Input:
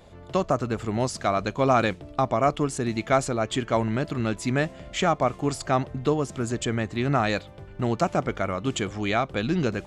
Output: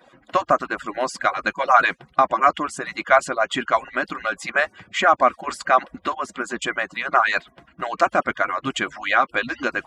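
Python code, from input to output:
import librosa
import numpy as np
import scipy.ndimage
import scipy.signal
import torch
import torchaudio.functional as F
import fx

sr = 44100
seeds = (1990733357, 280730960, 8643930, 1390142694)

y = fx.hpss_only(x, sr, part='percussive')
y = scipy.signal.sosfilt(scipy.signal.butter(2, 60.0, 'highpass', fs=sr, output='sos'), y)
y = fx.peak_eq(y, sr, hz=1500.0, db=15.0, octaves=2.0)
y = fx.notch_comb(y, sr, f0_hz=440.0)
y = y * 10.0 ** (-1.0 / 20.0)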